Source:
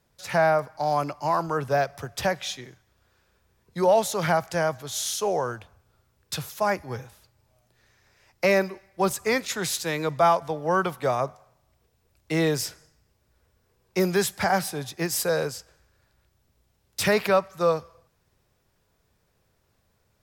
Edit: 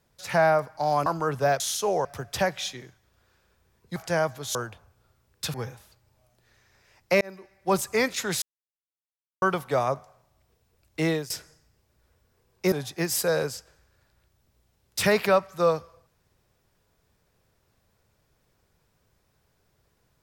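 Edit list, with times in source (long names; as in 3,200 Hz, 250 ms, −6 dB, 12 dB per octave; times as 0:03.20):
0:01.06–0:01.35: remove
0:03.80–0:04.40: remove
0:04.99–0:05.44: move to 0:01.89
0:06.43–0:06.86: remove
0:08.53–0:09.03: fade in
0:09.74–0:10.74: silence
0:12.35–0:12.62: fade out, to −19 dB
0:14.04–0:14.73: remove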